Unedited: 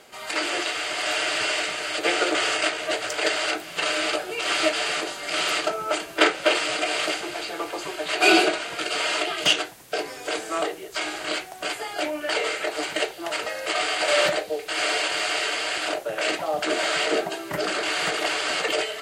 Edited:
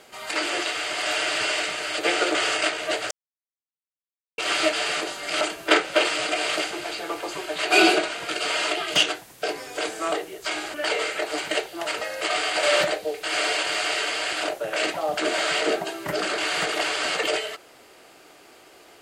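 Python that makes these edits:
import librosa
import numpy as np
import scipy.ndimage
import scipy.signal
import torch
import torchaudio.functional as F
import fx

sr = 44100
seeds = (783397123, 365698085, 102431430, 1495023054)

y = fx.edit(x, sr, fx.silence(start_s=3.11, length_s=1.27),
    fx.cut(start_s=5.41, length_s=0.5),
    fx.cut(start_s=11.24, length_s=0.95), tone=tone)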